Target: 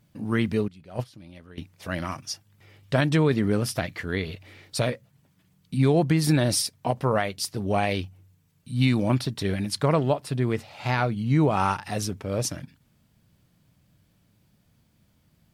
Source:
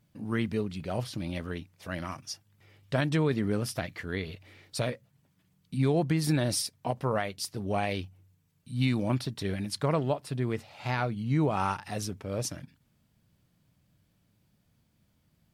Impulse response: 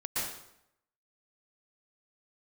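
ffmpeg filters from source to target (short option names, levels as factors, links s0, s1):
-filter_complex "[0:a]asettb=1/sr,asplit=3[s0][s1][s2];[s0]atrim=end=0.684[s3];[s1]atrim=start=0.68:end=1.58,asetpts=PTS-STARTPTS,afade=t=in:d=0.004:c=qsin,afade=t=out:st=0.896:d=0.004:c=qsin,agate=range=0.141:threshold=0.0355:ratio=16:detection=peak[s4];[s2]atrim=start=1.576[s5];[s3][s4]acrossfade=d=0.004:c1=hsin:c2=qsin[s6];[s6][s5]acrossfade=d=0.004:c1=qsin:c2=hsin,volume=1.88"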